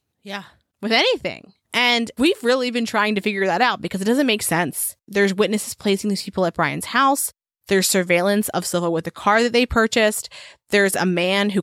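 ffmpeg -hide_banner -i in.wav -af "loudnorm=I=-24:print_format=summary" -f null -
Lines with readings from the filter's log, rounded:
Input Integrated:    -19.2 LUFS
Input True Peak:      -4.4 dBTP
Input LRA:             1.7 LU
Input Threshold:     -29.6 LUFS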